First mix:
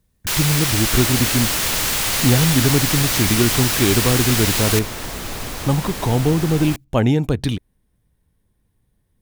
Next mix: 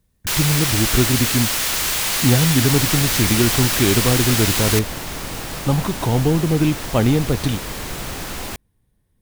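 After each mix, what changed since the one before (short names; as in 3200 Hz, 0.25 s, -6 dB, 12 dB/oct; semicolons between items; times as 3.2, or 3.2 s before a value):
second sound: entry +1.80 s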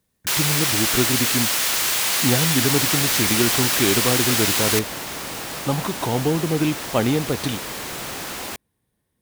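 master: add HPF 280 Hz 6 dB/oct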